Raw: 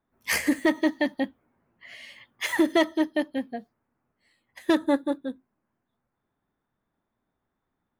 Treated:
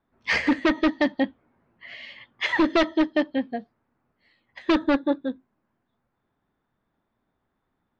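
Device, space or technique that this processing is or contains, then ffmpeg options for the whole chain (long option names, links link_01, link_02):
synthesiser wavefolder: -af "aeval=exprs='0.141*(abs(mod(val(0)/0.141+3,4)-2)-1)':channel_layout=same,lowpass=frequency=4500:width=0.5412,lowpass=frequency=4500:width=1.3066,volume=4dB"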